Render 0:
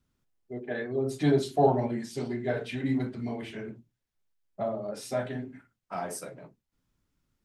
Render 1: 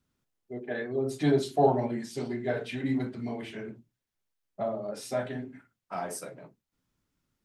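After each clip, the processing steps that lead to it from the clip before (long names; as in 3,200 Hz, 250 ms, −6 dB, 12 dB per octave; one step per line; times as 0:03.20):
low-shelf EQ 77 Hz −8 dB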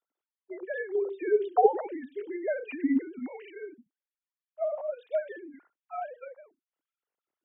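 three sine waves on the formant tracks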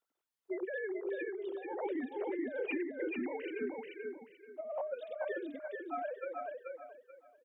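compressor whose output falls as the input rises −37 dBFS, ratio −1
on a send: repeating echo 434 ms, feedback 26%, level −3.5 dB
on the sum: level −3.5 dB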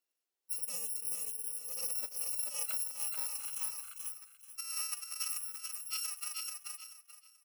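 samples in bit-reversed order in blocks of 128 samples
high-pass filter sweep 360 Hz → 1,300 Hz, 0:01.28–0:04.33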